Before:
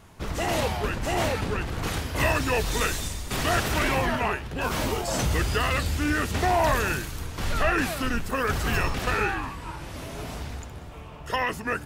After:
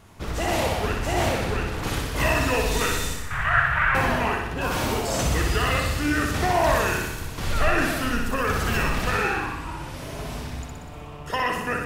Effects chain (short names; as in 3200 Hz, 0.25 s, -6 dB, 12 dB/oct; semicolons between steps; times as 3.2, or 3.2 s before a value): 3.16–3.95 EQ curve 130 Hz 0 dB, 280 Hz -26 dB, 1600 Hz +10 dB, 5100 Hz -23 dB; on a send: flutter echo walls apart 10.5 m, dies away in 0.92 s